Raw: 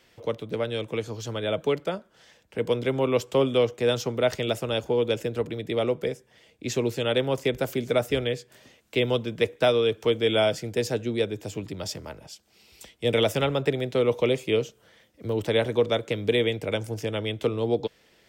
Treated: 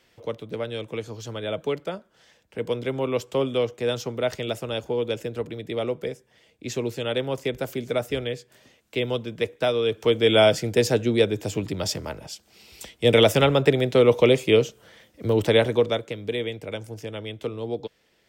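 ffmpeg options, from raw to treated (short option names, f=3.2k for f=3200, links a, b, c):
-af "volume=6dB,afade=t=in:st=9.75:d=0.73:silence=0.398107,afade=t=out:st=15.44:d=0.7:silence=0.281838"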